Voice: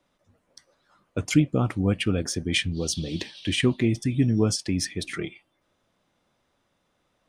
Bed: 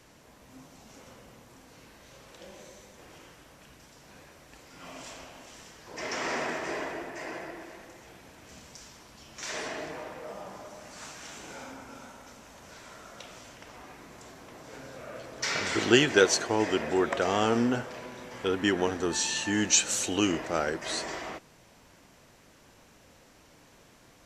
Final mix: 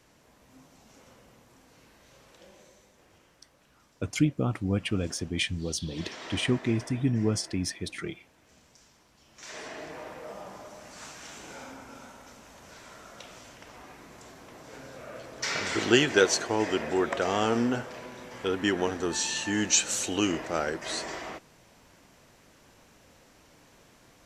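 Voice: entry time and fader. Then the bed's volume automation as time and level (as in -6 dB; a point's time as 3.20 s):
2.85 s, -4.5 dB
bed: 2.26 s -4.5 dB
3.20 s -10.5 dB
9.14 s -10.5 dB
10.10 s -0.5 dB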